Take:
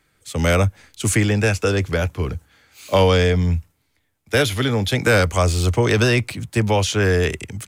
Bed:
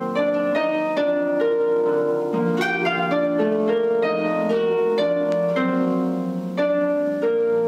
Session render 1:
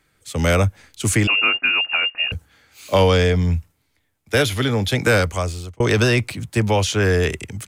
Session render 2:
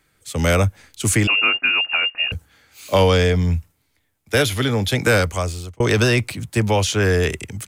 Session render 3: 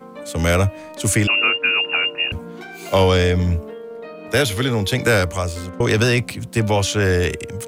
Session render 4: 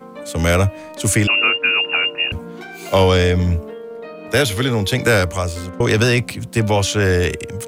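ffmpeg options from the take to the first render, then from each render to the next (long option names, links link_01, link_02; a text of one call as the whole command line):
ffmpeg -i in.wav -filter_complex "[0:a]asettb=1/sr,asplit=3[link_01][link_02][link_03];[link_01]atrim=end=1.274[link_04];[link_02]atrim=start=1.27:end=2.32,asetpts=PTS-STARTPTS,afade=type=in:duration=0.004:curve=qsin,afade=type=out:start_time=1.046:duration=0.004:curve=qsin,lowpass=frequency=2500:width_type=q:width=0.5098,lowpass=frequency=2500:width_type=q:width=0.6013,lowpass=frequency=2500:width_type=q:width=0.9,lowpass=frequency=2500:width_type=q:width=2.563,afreqshift=-2900[link_05];[link_03]atrim=start=2.316[link_06];[link_04][link_05]acrossfade=duration=0.004:curve1=hsin:curve2=qsin[link_07];[link_07][link_06]acrossfade=duration=0.004:curve1=qsin:curve2=hsin,asplit=2[link_08][link_09];[link_08]atrim=end=5.8,asetpts=PTS-STARTPTS,afade=type=out:start_time=5.09:duration=0.71[link_10];[link_09]atrim=start=5.8,asetpts=PTS-STARTPTS,afade=type=in:duration=0.004:curve=hsin[link_11];[link_10][link_11]concat=n=2:v=0:a=1" out.wav
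ffmpeg -i in.wav -af "highshelf=frequency=8300:gain=4" out.wav
ffmpeg -i in.wav -i bed.wav -filter_complex "[1:a]volume=-14dB[link_01];[0:a][link_01]amix=inputs=2:normalize=0" out.wav
ffmpeg -i in.wav -af "volume=1.5dB" out.wav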